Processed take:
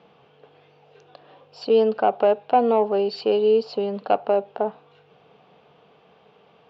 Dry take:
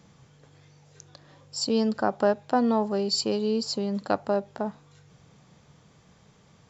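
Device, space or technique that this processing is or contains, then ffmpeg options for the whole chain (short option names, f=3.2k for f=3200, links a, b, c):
overdrive pedal into a guitar cabinet: -filter_complex "[0:a]asplit=2[a][b];[b]highpass=f=720:p=1,volume=14dB,asoftclip=type=tanh:threshold=-8.5dB[c];[a][c]amix=inputs=2:normalize=0,lowpass=f=1.7k:p=1,volume=-6dB,highpass=95,equalizer=f=110:t=q:w=4:g=-9,equalizer=f=440:t=q:w=4:g=10,equalizer=f=720:t=q:w=4:g=8,equalizer=f=1.9k:t=q:w=4:g=-6,equalizer=f=2.8k:t=q:w=4:g=9,lowpass=f=4.1k:w=0.5412,lowpass=f=4.1k:w=1.3066,volume=-2.5dB"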